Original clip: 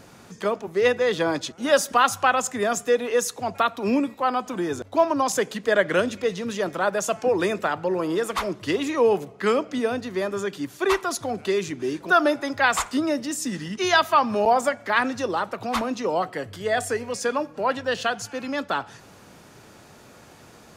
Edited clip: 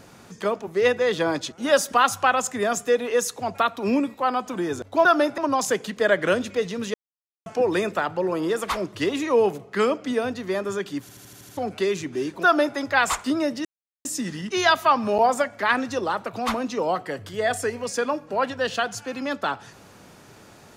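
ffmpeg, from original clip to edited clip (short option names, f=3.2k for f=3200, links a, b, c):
-filter_complex "[0:a]asplit=13[a][b][c][d][e][f][g][h][i][j][k][l][m];[a]atrim=end=5.052[n];[b]atrim=start=12.108:end=12.442[o];[c]atrim=start=5.048:end=6.61,asetpts=PTS-STARTPTS,afade=t=out:st=1.558:d=0.004:c=hsin[p];[d]atrim=start=6.61:end=7.13,asetpts=PTS-STARTPTS,volume=0[q];[e]atrim=start=7.13:end=10.762,asetpts=PTS-STARTPTS,afade=t=in:d=0.004:c=hsin[r];[f]atrim=start=10.678:end=10.762[s];[g]atrim=start=10.678:end=10.762[t];[h]atrim=start=10.678:end=10.762[u];[i]atrim=start=10.678:end=10.762[v];[j]atrim=start=10.678:end=10.762[w];[k]atrim=start=10.678:end=10.762[x];[l]atrim=start=11.238:end=13.32,asetpts=PTS-STARTPTS,afade=t=out:st=2.078:d=0.004:c=hsin,apad=pad_dur=0.4[y];[m]atrim=start=13.32,asetpts=PTS-STARTPTS,afade=t=in:d=0.004:c=hsin[z];[n][o]acrossfade=d=0.004:c1=hsin:c2=hsin[aa];[p][q][r]concat=n=3:v=0:a=1[ab];[aa][ab]acrossfade=d=0.004:c1=hsin:c2=hsin[ac];[ac][s]acrossfade=d=0.004:c1=hsin:c2=hsin[ad];[ad][t]acrossfade=d=0.004:c1=hsin:c2=hsin[ae];[ae][u]acrossfade=d=0.004:c1=hsin:c2=hsin[af];[af][v]acrossfade=d=0.004:c1=hsin:c2=hsin[ag];[ag][w]acrossfade=d=0.004:c1=hsin:c2=hsin[ah];[ah][x]acrossfade=d=0.004:c1=hsin:c2=hsin[ai];[y][z]concat=n=2:v=0:a=1[aj];[ai][aj]acrossfade=d=0.004:c1=hsin:c2=hsin"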